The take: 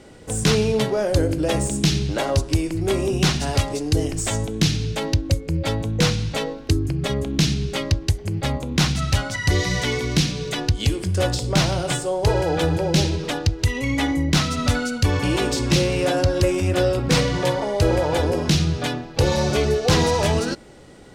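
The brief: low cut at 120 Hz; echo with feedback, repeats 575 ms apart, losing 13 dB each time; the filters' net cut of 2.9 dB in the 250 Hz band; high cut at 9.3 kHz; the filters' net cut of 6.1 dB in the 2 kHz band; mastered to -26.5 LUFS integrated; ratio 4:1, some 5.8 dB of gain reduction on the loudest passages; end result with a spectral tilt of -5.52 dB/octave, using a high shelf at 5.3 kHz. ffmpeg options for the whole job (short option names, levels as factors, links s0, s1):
-af "highpass=120,lowpass=9300,equalizer=f=250:t=o:g=-3.5,equalizer=f=2000:t=o:g=-6.5,highshelf=f=5300:g=-9,acompressor=threshold=0.0708:ratio=4,aecho=1:1:575|1150|1725:0.224|0.0493|0.0108,volume=1.19"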